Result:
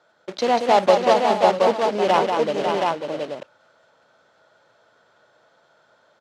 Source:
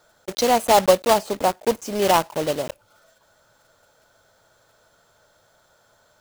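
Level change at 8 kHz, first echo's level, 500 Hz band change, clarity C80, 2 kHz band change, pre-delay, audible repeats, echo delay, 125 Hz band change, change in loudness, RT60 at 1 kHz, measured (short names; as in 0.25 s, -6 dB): -10.5 dB, -18.5 dB, +2.0 dB, none, +1.5 dB, none, 5, 49 ms, -1.5 dB, +1.0 dB, none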